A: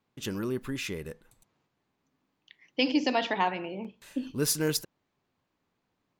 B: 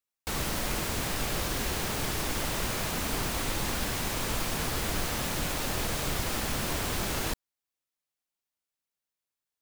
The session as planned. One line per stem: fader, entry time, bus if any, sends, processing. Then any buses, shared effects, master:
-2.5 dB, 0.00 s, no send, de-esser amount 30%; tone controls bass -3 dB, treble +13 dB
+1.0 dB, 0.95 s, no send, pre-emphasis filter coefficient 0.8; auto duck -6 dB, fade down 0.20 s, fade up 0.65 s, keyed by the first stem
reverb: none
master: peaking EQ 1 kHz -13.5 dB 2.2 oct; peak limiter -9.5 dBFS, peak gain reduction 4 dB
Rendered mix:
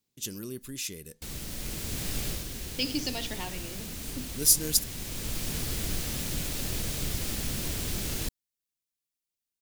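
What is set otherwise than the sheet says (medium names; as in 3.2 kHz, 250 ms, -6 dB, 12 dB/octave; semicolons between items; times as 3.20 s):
stem B: missing pre-emphasis filter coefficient 0.8; master: missing peak limiter -9.5 dBFS, peak gain reduction 4 dB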